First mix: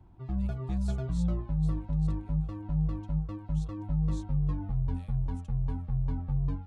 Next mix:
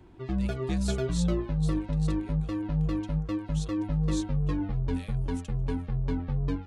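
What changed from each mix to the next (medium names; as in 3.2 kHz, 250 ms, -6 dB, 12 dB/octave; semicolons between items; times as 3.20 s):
master: add FFT filter 140 Hz 0 dB, 410 Hz +14 dB, 800 Hz +3 dB, 1.3 kHz +8 dB, 1.8 kHz +14 dB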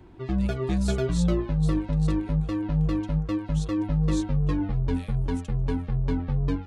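background +3.5 dB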